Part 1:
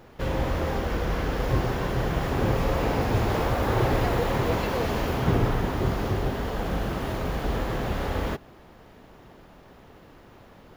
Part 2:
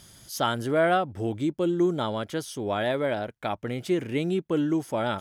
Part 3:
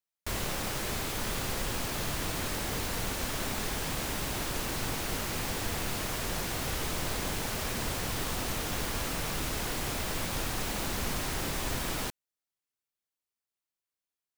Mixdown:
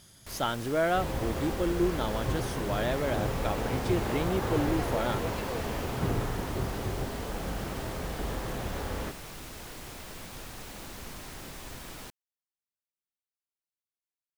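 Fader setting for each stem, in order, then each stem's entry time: -7.0, -4.5, -10.0 dB; 0.75, 0.00, 0.00 s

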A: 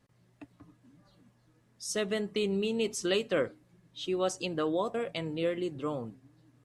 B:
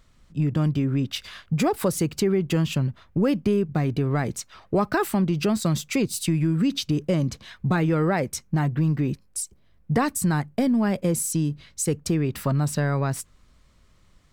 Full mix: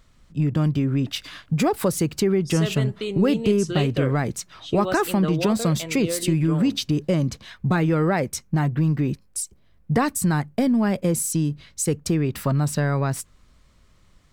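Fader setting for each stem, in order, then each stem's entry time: +1.5, +1.5 dB; 0.65, 0.00 s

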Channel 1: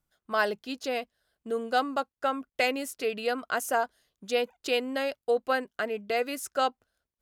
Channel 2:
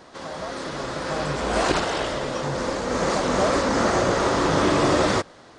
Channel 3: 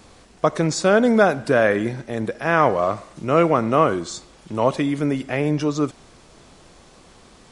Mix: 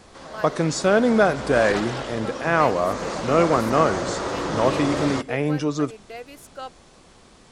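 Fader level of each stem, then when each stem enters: -9.5, -6.0, -2.0 dB; 0.00, 0.00, 0.00 s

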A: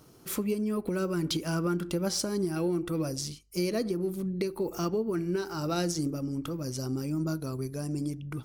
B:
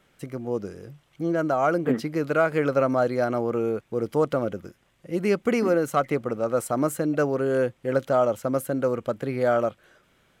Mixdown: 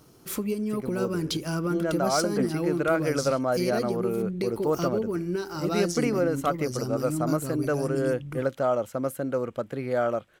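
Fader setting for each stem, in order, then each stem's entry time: +1.0, -3.5 dB; 0.00, 0.50 s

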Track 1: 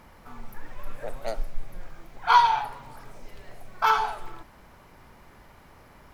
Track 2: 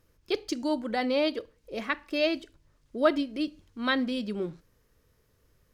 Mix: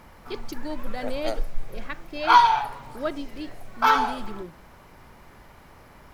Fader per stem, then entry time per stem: +2.5, -6.0 dB; 0.00, 0.00 s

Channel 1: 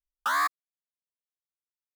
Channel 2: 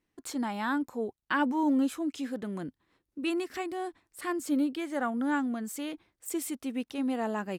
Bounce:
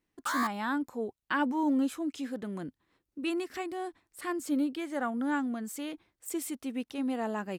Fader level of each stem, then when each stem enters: -6.0, -1.5 dB; 0.00, 0.00 s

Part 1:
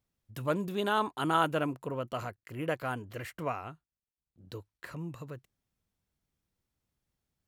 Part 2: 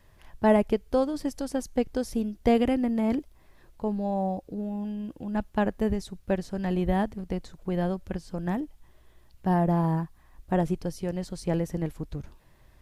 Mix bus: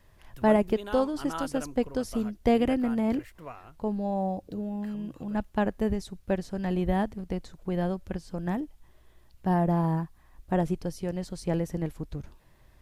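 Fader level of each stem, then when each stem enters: -8.5, -1.0 dB; 0.00, 0.00 s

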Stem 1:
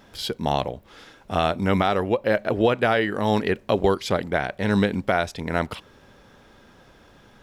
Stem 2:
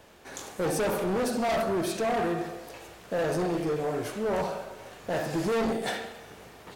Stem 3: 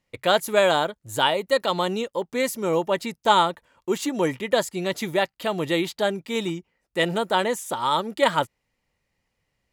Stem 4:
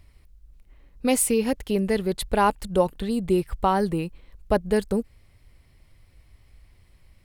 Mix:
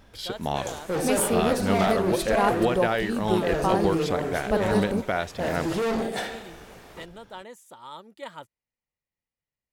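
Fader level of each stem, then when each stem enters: -5.0, +1.0, -19.0, -4.0 dB; 0.00, 0.30, 0.00, 0.00 s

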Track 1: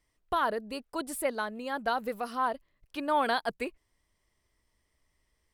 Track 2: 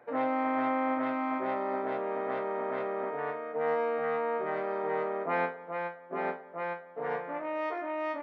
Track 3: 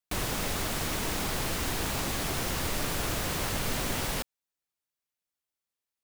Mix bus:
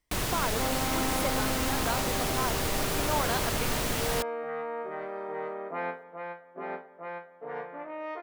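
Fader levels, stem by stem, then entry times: -4.0, -4.0, +1.0 dB; 0.00, 0.45, 0.00 s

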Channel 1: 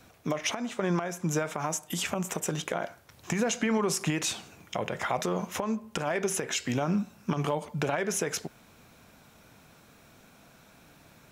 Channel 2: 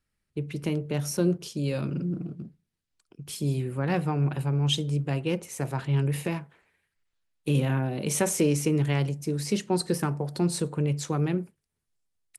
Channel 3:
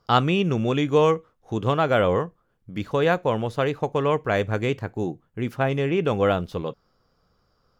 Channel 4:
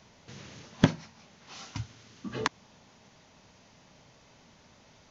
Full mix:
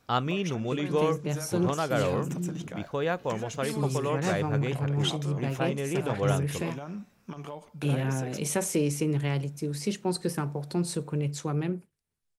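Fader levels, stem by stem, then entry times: -11.0, -3.0, -8.0, -19.0 dB; 0.00, 0.35, 0.00, 0.85 s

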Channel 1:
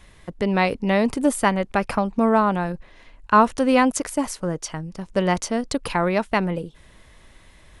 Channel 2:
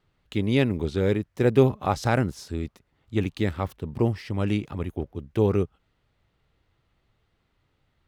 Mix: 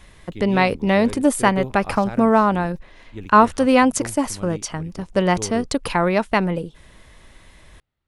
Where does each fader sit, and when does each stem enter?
+2.5, -10.5 dB; 0.00, 0.00 s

